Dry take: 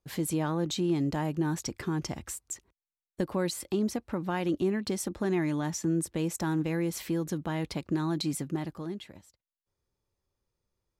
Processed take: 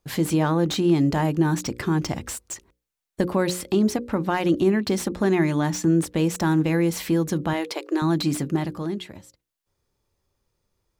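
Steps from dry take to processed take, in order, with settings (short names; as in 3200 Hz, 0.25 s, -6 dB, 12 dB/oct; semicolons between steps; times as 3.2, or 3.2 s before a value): 7.53–8.02 brick-wall FIR high-pass 300 Hz; notches 60/120/180/240/300/360/420/480/540 Hz; slew limiter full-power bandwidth 83 Hz; gain +9 dB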